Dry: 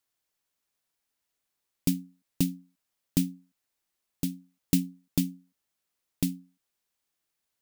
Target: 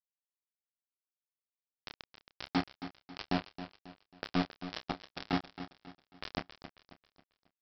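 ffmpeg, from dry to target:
ffmpeg -i in.wav -filter_complex "[0:a]afftfilt=real='re*lt(hypot(re,im),0.0501)':imag='im*lt(hypot(re,im),0.0501)':win_size=1024:overlap=0.75,asplit=2[link_01][link_02];[link_02]highpass=frequency=720:poles=1,volume=33dB,asoftclip=type=tanh:threshold=-16dB[link_03];[link_01][link_03]amix=inputs=2:normalize=0,lowpass=frequency=2000:poles=1,volume=-6dB,alimiter=level_in=6dB:limit=-24dB:level=0:latency=1:release=79,volume=-6dB,flanger=delay=7.3:depth=5.2:regen=23:speed=0.38:shape=sinusoidal,acontrast=53,aresample=11025,acrusher=bits=4:mix=0:aa=0.000001,aresample=44100,asplit=2[link_04][link_05];[link_05]adelay=29,volume=-11dB[link_06];[link_04][link_06]amix=inputs=2:normalize=0,asplit=2[link_07][link_08];[link_08]aecho=0:1:271|542|813|1084:0.251|0.098|0.0382|0.0149[link_09];[link_07][link_09]amix=inputs=2:normalize=0,volume=1dB" out.wav

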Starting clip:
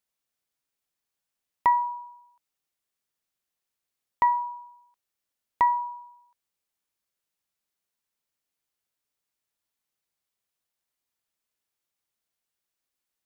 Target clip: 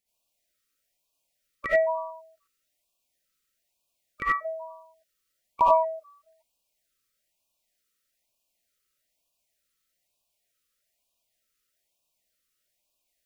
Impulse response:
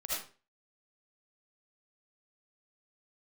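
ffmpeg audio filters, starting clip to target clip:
-filter_complex "[0:a]asplit=3[link_01][link_02][link_03];[link_02]asetrate=29433,aresample=44100,atempo=1.49831,volume=-12dB[link_04];[link_03]asetrate=52444,aresample=44100,atempo=0.840896,volume=-13dB[link_05];[link_01][link_04][link_05]amix=inputs=3:normalize=0[link_06];[1:a]atrim=start_sample=2205,atrim=end_sample=4410[link_07];[link_06][link_07]afir=irnorm=-1:irlink=0,afftfilt=real='re*(1-between(b*sr/1024,770*pow(1700/770,0.5+0.5*sin(2*PI*1.1*pts/sr))/1.41,770*pow(1700/770,0.5+0.5*sin(2*PI*1.1*pts/sr))*1.41))':imag='im*(1-between(b*sr/1024,770*pow(1700/770,0.5+0.5*sin(2*PI*1.1*pts/sr))/1.41,770*pow(1700/770,0.5+0.5*sin(2*PI*1.1*pts/sr))*1.41))':win_size=1024:overlap=0.75,volume=5dB"

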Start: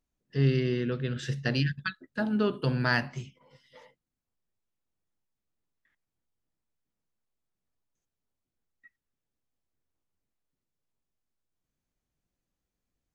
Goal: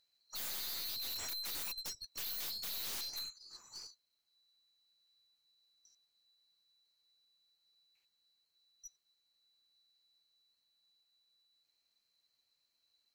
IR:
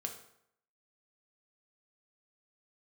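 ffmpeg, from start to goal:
-af "afftfilt=real='real(if(lt(b,736),b+184*(1-2*mod(floor(b/184),2)),b),0)':imag='imag(if(lt(b,736),b+184*(1-2*mod(floor(b/184),2)),b),0)':win_size=2048:overlap=0.75,aeval=exprs='(mod(26.6*val(0)+1,2)-1)/26.6':channel_layout=same,aeval=exprs='(tanh(200*val(0)+0.3)-tanh(0.3))/200':channel_layout=same,volume=5.5dB"

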